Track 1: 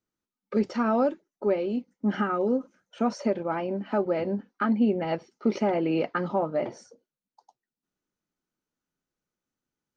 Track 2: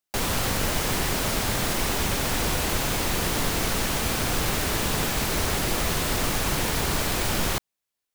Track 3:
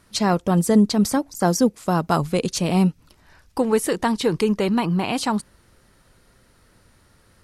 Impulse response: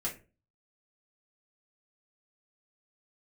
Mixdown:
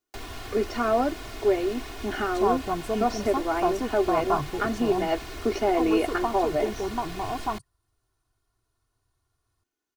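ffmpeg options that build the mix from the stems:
-filter_complex "[0:a]bass=f=250:g=-8,treble=f=4000:g=0,volume=1.12[s0];[1:a]acrossover=split=180|5300[s1][s2][s3];[s1]acompressor=threshold=0.0282:ratio=4[s4];[s2]acompressor=threshold=0.0316:ratio=4[s5];[s3]acompressor=threshold=0.00501:ratio=4[s6];[s4][s5][s6]amix=inputs=3:normalize=0,volume=0.299[s7];[2:a]afwtdn=0.0562,equalizer=f=125:t=o:w=1:g=7,equalizer=f=250:t=o:w=1:g=-9,equalizer=f=500:t=o:w=1:g=-4,equalizer=f=1000:t=o:w=1:g=6,equalizer=f=2000:t=o:w=1:g=-10,adelay=2200,volume=0.501[s8];[s0][s7][s8]amix=inputs=3:normalize=0,aecho=1:1:2.8:0.82"

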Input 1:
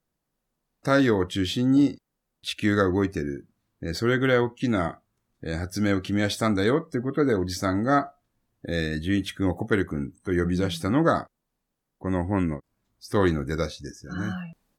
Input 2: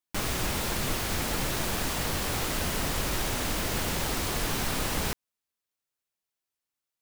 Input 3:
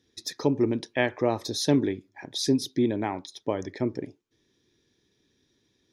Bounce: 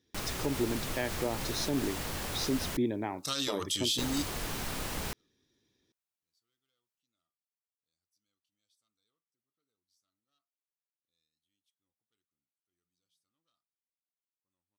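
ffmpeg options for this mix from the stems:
-filter_complex "[0:a]equalizer=f=1200:t=o:w=0.45:g=13,asoftclip=type=tanh:threshold=0.335,aexciter=amount=13.5:drive=6.1:freq=2700,adelay=2400,volume=0.211[s0];[1:a]volume=0.447,asplit=3[s1][s2][s3];[s1]atrim=end=2.77,asetpts=PTS-STARTPTS,afade=t=out:st=2.766:d=0.004:c=hsin[s4];[s2]atrim=start=2.77:end=3.98,asetpts=PTS-STARTPTS,volume=0[s5];[s3]atrim=start=3.98,asetpts=PTS-STARTPTS,afade=t=in:d=0.004:c=hsin[s6];[s4][s5][s6]concat=n=3:v=0:a=1[s7];[2:a]volume=0.501,asplit=2[s8][s9];[s9]apad=whole_len=757696[s10];[s0][s10]sidechaingate=range=0.00178:threshold=0.00126:ratio=16:detection=peak[s11];[s11][s7][s8]amix=inputs=3:normalize=0,alimiter=limit=0.0944:level=0:latency=1:release=83"

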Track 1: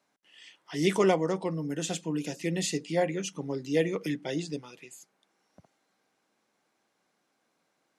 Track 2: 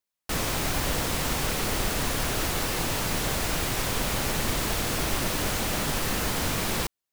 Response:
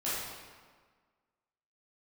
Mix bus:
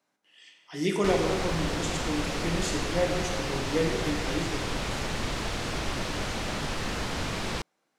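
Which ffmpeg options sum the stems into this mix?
-filter_complex "[0:a]volume=0.531,asplit=2[s0][s1];[s1]volume=0.562[s2];[1:a]lowpass=5800,adelay=750,volume=0.708[s3];[2:a]atrim=start_sample=2205[s4];[s2][s4]afir=irnorm=-1:irlink=0[s5];[s0][s3][s5]amix=inputs=3:normalize=0"

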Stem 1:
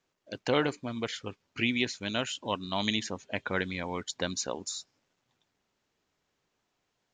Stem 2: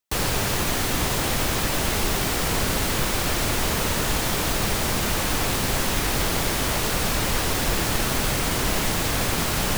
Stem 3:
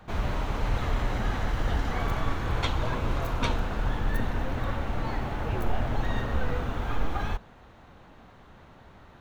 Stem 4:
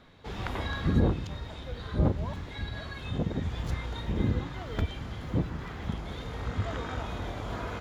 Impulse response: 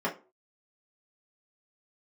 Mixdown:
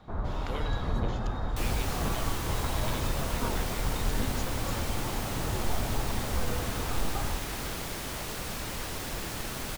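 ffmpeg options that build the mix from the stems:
-filter_complex "[0:a]volume=0.224[s0];[1:a]adelay=1450,volume=0.237[s1];[2:a]lowpass=f=1400:w=0.5412,lowpass=f=1400:w=1.3066,volume=0.668[s2];[3:a]highshelf=f=2400:g=11.5,volume=0.282[s3];[s0][s1][s2][s3]amix=inputs=4:normalize=0"

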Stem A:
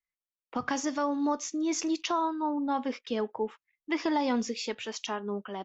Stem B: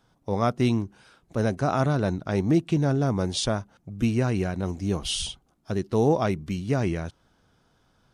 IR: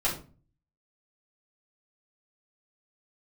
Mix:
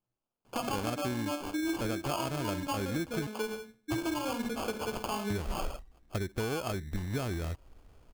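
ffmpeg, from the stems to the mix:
-filter_complex "[0:a]volume=0.891,asplit=2[s0][s1];[s1]volume=0.422[s2];[1:a]asubboost=boost=9:cutoff=51,adelay=450,volume=1.19,asplit=3[s3][s4][s5];[s3]atrim=end=3.27,asetpts=PTS-STARTPTS,afade=t=out:st=3.266:d=0.004:c=hsin[s6];[s4]atrim=start=3.27:end=5.3,asetpts=PTS-STARTPTS,volume=0[s7];[s5]atrim=start=5.3,asetpts=PTS-STARTPTS,afade=t=in:d=0.004:c=hsin[s8];[s6][s7][s8]concat=n=3:v=0:a=1[s9];[2:a]atrim=start_sample=2205[s10];[s2][s10]afir=irnorm=-1:irlink=0[s11];[s0][s9][s11]amix=inputs=3:normalize=0,acrusher=samples=23:mix=1:aa=0.000001,acompressor=threshold=0.0316:ratio=10"

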